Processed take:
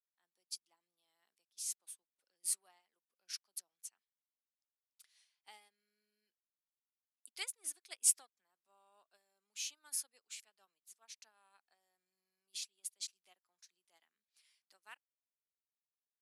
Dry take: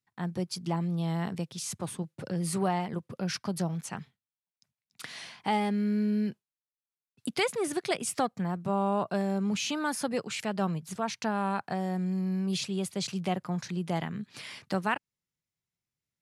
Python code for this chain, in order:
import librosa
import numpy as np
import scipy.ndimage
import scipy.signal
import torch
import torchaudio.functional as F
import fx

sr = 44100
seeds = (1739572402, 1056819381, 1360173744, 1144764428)

y = scipy.signal.sosfilt(scipy.signal.butter(4, 260.0, 'highpass', fs=sr, output='sos'), x)
y = np.diff(y, prepend=0.0)
y = fx.upward_expand(y, sr, threshold_db=-52.0, expansion=2.5)
y = F.gain(torch.from_numpy(y), 5.5).numpy()